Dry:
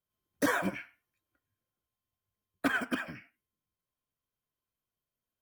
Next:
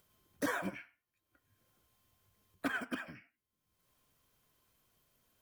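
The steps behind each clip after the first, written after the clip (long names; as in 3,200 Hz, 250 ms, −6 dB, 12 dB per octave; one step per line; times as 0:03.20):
upward compression, threshold −48 dBFS
level −6.5 dB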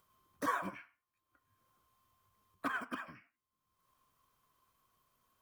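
parametric band 1,100 Hz +14.5 dB 0.44 octaves
level −4.5 dB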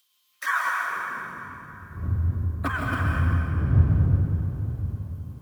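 wind on the microphone 99 Hz −41 dBFS
high-pass filter sweep 3,400 Hz → 87 Hz, 0:00.25–0:01.53
dense smooth reverb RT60 3.1 s, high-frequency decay 0.7×, pre-delay 115 ms, DRR −1.5 dB
level +8 dB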